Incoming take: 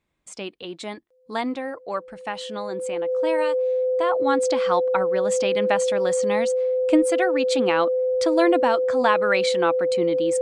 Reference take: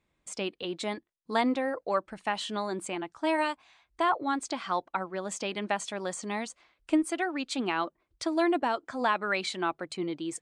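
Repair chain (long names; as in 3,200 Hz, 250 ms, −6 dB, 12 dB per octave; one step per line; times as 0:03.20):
notch filter 510 Hz, Q 30
level 0 dB, from 0:04.15 −6.5 dB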